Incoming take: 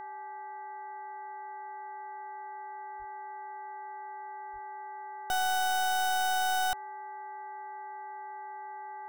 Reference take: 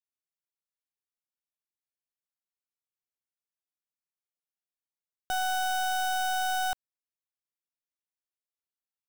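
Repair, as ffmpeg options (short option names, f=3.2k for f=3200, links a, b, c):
-filter_complex "[0:a]bandreject=f=392.3:t=h:w=4,bandreject=f=784.6:t=h:w=4,bandreject=f=1.1769k:t=h:w=4,bandreject=f=1.5692k:t=h:w=4,bandreject=f=1.9615k:t=h:w=4,bandreject=f=850:w=30,asplit=3[a][b][c];[a]afade=t=out:st=2.98:d=0.02[d];[b]highpass=f=140:w=0.5412,highpass=f=140:w=1.3066,afade=t=in:st=2.98:d=0.02,afade=t=out:st=3.1:d=0.02[e];[c]afade=t=in:st=3.1:d=0.02[f];[d][e][f]amix=inputs=3:normalize=0,asplit=3[g][h][i];[g]afade=t=out:st=4.52:d=0.02[j];[h]highpass=f=140:w=0.5412,highpass=f=140:w=1.3066,afade=t=in:st=4.52:d=0.02,afade=t=out:st=4.64:d=0.02[k];[i]afade=t=in:st=4.64:d=0.02[l];[j][k][l]amix=inputs=3:normalize=0,asplit=3[m][n][o];[m]afade=t=out:st=5.42:d=0.02[p];[n]highpass=f=140:w=0.5412,highpass=f=140:w=1.3066,afade=t=in:st=5.42:d=0.02,afade=t=out:st=5.54:d=0.02[q];[o]afade=t=in:st=5.54:d=0.02[r];[p][q][r]amix=inputs=3:normalize=0"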